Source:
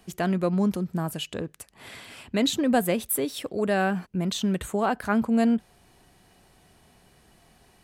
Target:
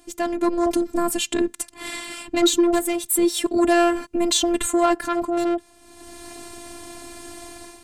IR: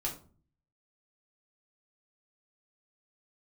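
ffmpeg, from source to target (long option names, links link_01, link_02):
-af "equalizer=frequency=125:width_type=o:width=1:gain=8,equalizer=frequency=250:width_type=o:width=1:gain=11,equalizer=frequency=1000:width_type=o:width=1:gain=5,equalizer=frequency=2000:width_type=o:width=1:gain=3,equalizer=frequency=4000:width_type=o:width=1:gain=3,equalizer=frequency=8000:width_type=o:width=1:gain=11,aeval=exprs='0.708*(cos(1*acos(clip(val(0)/0.708,-1,1)))-cos(1*PI/2))+0.00447*(cos(2*acos(clip(val(0)/0.708,-1,1)))-cos(2*PI/2))+0.0398*(cos(3*acos(clip(val(0)/0.708,-1,1)))-cos(3*PI/2))+0.126*(cos(5*acos(clip(val(0)/0.708,-1,1)))-cos(5*PI/2))':channel_layout=same,dynaudnorm=framelen=170:gausssize=5:maxgain=16dB,afftfilt=real='hypot(re,im)*cos(PI*b)':imag='0':win_size=512:overlap=0.75,volume=-4dB"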